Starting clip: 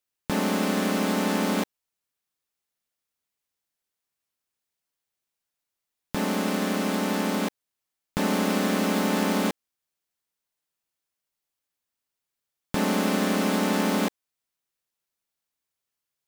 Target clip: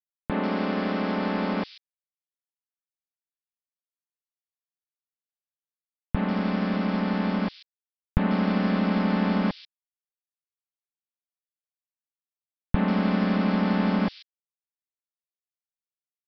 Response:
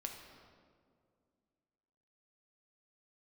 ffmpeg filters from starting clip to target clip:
-filter_complex "[0:a]asubboost=boost=9:cutoff=110,aresample=11025,aeval=exprs='val(0)*gte(abs(val(0)),0.0224)':c=same,aresample=44100,highshelf=f=3800:g=-8.5,acrossover=split=3400[s0][s1];[s1]adelay=140[s2];[s0][s2]amix=inputs=2:normalize=0"

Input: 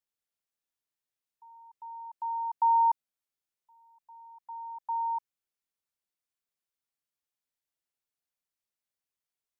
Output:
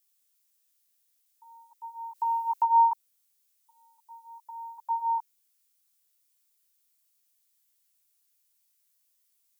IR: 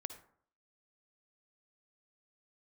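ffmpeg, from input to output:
-filter_complex "[0:a]asplit=3[s0][s1][s2];[s0]afade=t=out:st=2.14:d=0.02[s3];[s1]acontrast=77,afade=t=in:st=2.14:d=0.02,afade=t=out:st=2.61:d=0.02[s4];[s2]afade=t=in:st=2.61:d=0.02[s5];[s3][s4][s5]amix=inputs=3:normalize=0,flanger=delay=15.5:depth=2.6:speed=0.65,crystalizer=i=7.5:c=0,volume=1.26"

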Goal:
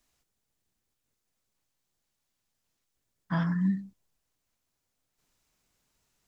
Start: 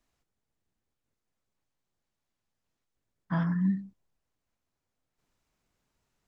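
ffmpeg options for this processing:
-af "highshelf=f=3000:g=9.5"

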